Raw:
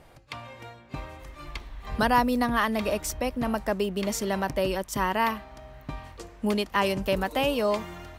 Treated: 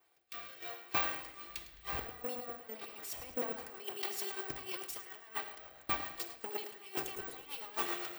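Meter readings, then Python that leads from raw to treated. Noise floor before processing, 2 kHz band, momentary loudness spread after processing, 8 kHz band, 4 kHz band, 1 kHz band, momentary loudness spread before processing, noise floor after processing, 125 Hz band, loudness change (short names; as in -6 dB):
-52 dBFS, -12.0 dB, 9 LU, -10.0 dB, -10.5 dB, -15.5 dB, 17 LU, -58 dBFS, -21.0 dB, -12.5 dB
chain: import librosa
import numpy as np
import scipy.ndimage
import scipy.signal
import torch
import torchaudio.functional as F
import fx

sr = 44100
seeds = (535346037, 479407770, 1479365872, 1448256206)

y = fx.lower_of_two(x, sr, delay_ms=2.6)
y = fx.highpass(y, sr, hz=1100.0, slope=6)
y = fx.notch(y, sr, hz=6100.0, q=16.0)
y = fx.over_compress(y, sr, threshold_db=-42.0, ratio=-1.0)
y = fx.rotary_switch(y, sr, hz=0.8, then_hz=7.5, switch_at_s=2.88)
y = fx.echo_feedback(y, sr, ms=106, feedback_pct=56, wet_db=-11.5)
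y = fx.room_shoebox(y, sr, seeds[0], volume_m3=1600.0, walls='mixed', distance_m=0.79)
y = (np.kron(y[::2], np.eye(2)[0]) * 2)[:len(y)]
y = fx.band_widen(y, sr, depth_pct=100)
y = F.gain(torch.from_numpy(y), -1.5).numpy()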